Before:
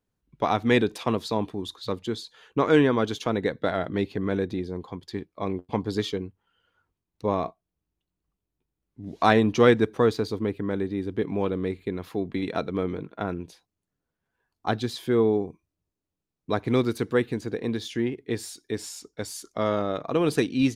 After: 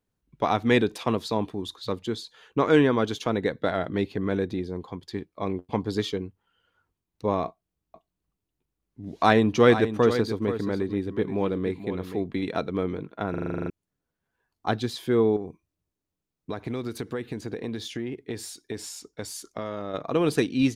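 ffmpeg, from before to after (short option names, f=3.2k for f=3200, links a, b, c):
-filter_complex "[0:a]asettb=1/sr,asplit=3[a][b][c];[a]atrim=end=7.464[d];[b]atrim=start=7.46:end=12.24,asetpts=PTS-STARTPTS,afade=t=in:d=0.004:c=qsin,afade=t=out:st=4.776:d=0.004:c=qsin,aecho=1:1:480:0.299,atrim=end_sample=210798[e];[c]atrim=start=12.236[f];[d][e]acrossfade=d=0.004:c1=hsin:c2=qsin[g];[g][f]acrossfade=d=0.004:c1=qsin:c2=hsin,asettb=1/sr,asplit=3[h][i][j];[h]atrim=end=15.364[k];[i]atrim=start=15.36:end=19.94,asetpts=PTS-STARTPTS,afade=t=in:d=0.004:c=qsin,afade=t=out:st=4.576:d=0.004:c=qsin,acompressor=threshold=-27dB:ratio=6:attack=3.2:release=140:knee=1:detection=peak[l];[j]atrim=start=19.936[m];[k][l]acrossfade=d=0.004:c1=hsin:c2=qsin[n];[n][m]acrossfade=d=0.004:c1=qsin:c2=hsin,asplit=11[o][p][q][r][s][t][u][v][w][x][y];[o]atrim=end=13.342[z];[p]atrim=start=13.298:end=13.342[aa];[q]atrim=start=13.298:end=13.342[ab];[r]atrim=start=13.298:end=13.342[ac];[s]atrim=start=13.298:end=13.342[ad];[t]atrim=start=13.298:end=13.342[ae];[u]atrim=start=13.298:end=13.342[af];[v]atrim=start=13.298:end=13.342[ag];[w]atrim=start=13.298:end=13.342[ah];[x]atrim=start=13.298:end=13.342[ai];[y]atrim=start=13.698[aj];[z][aa]acrossfade=d=0.004:c1=hsin:c2=hsin[ak];[ak][ab]acrossfade=d=0.004:c1=hsin:c2=hsin[al];[al][ac]acrossfade=d=0.004:c1=hsin:c2=hsin[am];[am][ad]acrossfade=d=0.004:c1=hsin:c2=hsin[an];[an][ae]acrossfade=d=0.004:c1=hsin:c2=hsin[ao];[ao][af]acrossfade=d=0.004:c1=hsin:c2=hsin[ap];[ap][ag]acrossfade=d=0.004:c1=hsin:c2=hsin[aq];[aq][ah]acrossfade=d=0.004:c1=hsin:c2=hsin[ar];[ar][ai]acrossfade=d=0.004:c1=hsin:c2=hsin[as];[as][aj]acrossfade=d=0.004:c1=hsin:c2=hsin"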